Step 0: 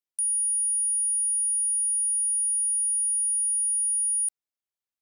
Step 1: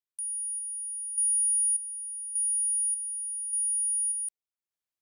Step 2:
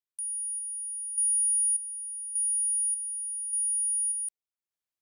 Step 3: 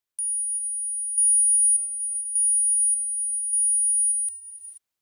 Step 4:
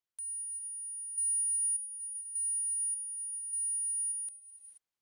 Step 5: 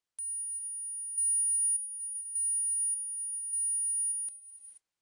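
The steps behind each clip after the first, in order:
random-step tremolo 1.7 Hz, depth 75%
no audible change
gated-style reverb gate 500 ms rising, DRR 4.5 dB; trim +6.5 dB
treble shelf 9.2 kHz -11 dB; trim -6.5 dB
trim +3 dB; AAC 48 kbps 22.05 kHz

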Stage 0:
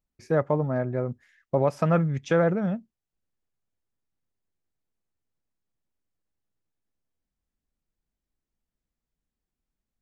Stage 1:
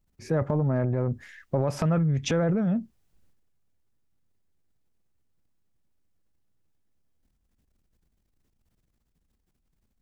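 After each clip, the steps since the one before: bass shelf 250 Hz +8.5 dB; transient shaper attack -6 dB, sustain +10 dB; compression 5:1, threshold -26 dBFS, peak gain reduction 10.5 dB; trim +3.5 dB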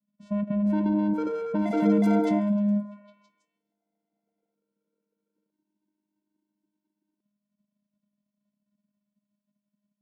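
vocoder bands 4, square 205 Hz; repeats whose band climbs or falls 162 ms, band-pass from 430 Hz, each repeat 0.7 oct, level -5.5 dB; ever faster or slower copies 521 ms, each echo +7 st, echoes 3

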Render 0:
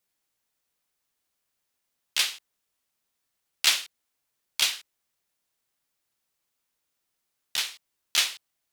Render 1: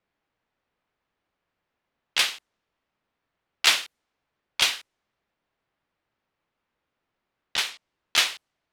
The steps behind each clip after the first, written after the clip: level-controlled noise filter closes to 3 kHz, open at -26 dBFS; treble shelf 2.8 kHz -10 dB; trim +8.5 dB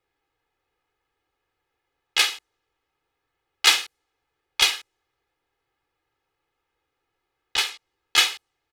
comb 2.4 ms, depth 94%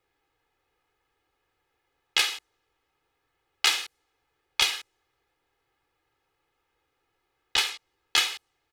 compression 6:1, threshold -22 dBFS, peak gain reduction 11 dB; trim +2.5 dB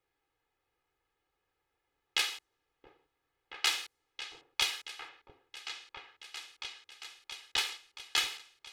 delay with an opening low-pass 675 ms, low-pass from 400 Hz, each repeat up 2 oct, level -6 dB; trim -7 dB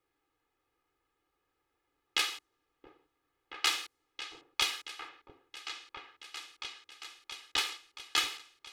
small resonant body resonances 300/1200 Hz, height 7 dB, ringing for 25 ms

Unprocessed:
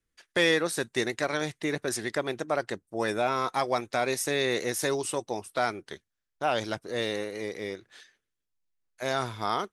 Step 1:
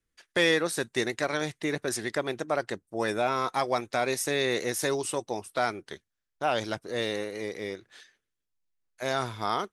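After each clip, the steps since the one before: no audible change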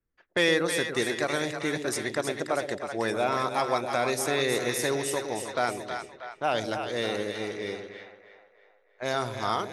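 two-band feedback delay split 610 Hz, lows 114 ms, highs 318 ms, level -6.5 dB; level-controlled noise filter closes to 1.4 kHz, open at -27 dBFS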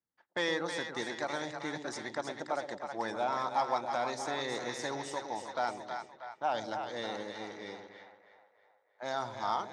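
partial rectifier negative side -3 dB; cabinet simulation 140–6900 Hz, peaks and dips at 410 Hz -7 dB, 870 Hz +10 dB, 2.6 kHz -8 dB; trim -6 dB

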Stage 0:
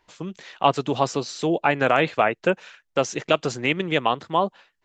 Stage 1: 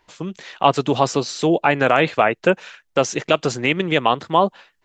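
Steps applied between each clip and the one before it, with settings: in parallel at -2 dB: peak limiter -11 dBFS, peak gain reduction 7 dB; on the sum: level rider; trim -1 dB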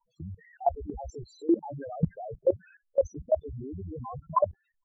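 octave divider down 1 oct, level +1 dB; loudest bins only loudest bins 2; level held to a coarse grid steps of 19 dB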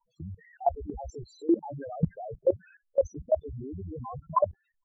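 no audible change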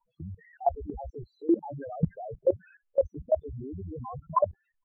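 low-pass 2.9 kHz 24 dB/octave

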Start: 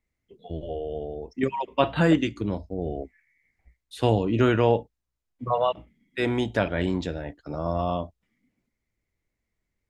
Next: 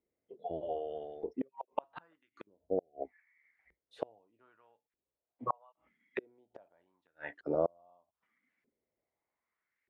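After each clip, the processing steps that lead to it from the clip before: inverted gate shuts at -19 dBFS, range -40 dB; LFO band-pass saw up 0.81 Hz 390–1900 Hz; trim +6.5 dB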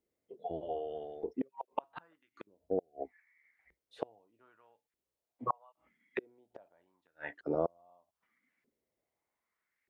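dynamic bell 580 Hz, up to -6 dB, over -49 dBFS, Q 5.6; trim +1 dB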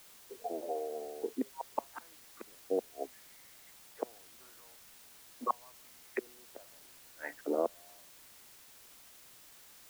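Chebyshev band-pass 220–2300 Hz, order 4; in parallel at -7 dB: word length cut 8-bit, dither triangular; on the sum: trim -2 dB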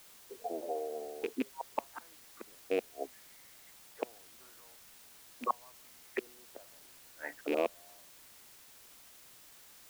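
rattle on loud lows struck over -42 dBFS, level -28 dBFS

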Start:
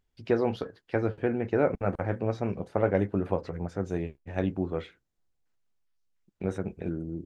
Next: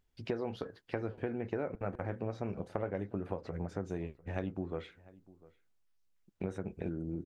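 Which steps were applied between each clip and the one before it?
compression, threshold -33 dBFS, peak gain reduction 13.5 dB; echo from a far wall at 120 m, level -21 dB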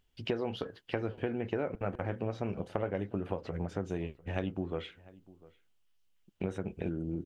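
peaking EQ 3 kHz +9.5 dB 0.4 oct; trim +2.5 dB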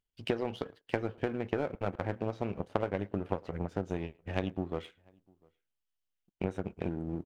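power-law waveshaper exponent 1.4; speakerphone echo 110 ms, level -25 dB; trim +5.5 dB

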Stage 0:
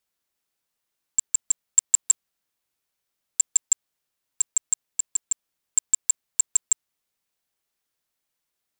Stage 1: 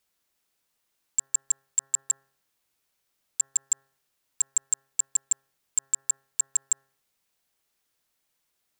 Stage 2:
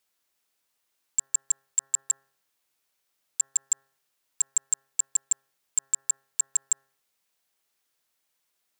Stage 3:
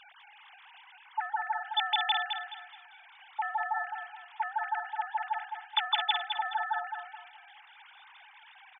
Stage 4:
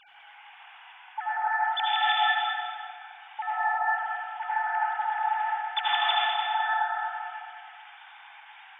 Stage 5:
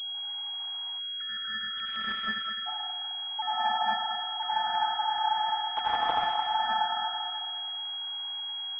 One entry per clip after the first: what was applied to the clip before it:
de-hum 135.5 Hz, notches 14; peak limiter -19 dBFS, peak gain reduction 11.5 dB; trim +4.5 dB
bass shelf 240 Hz -8 dB
formants replaced by sine waves; feedback delay 212 ms, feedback 34%, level -6.5 dB; trim -3 dB
reverberation RT60 1.9 s, pre-delay 63 ms, DRR -6.5 dB; trim -2 dB
spectral selection erased 0.99–2.66 s, 580–1300 Hz; class-D stage that switches slowly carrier 3.3 kHz

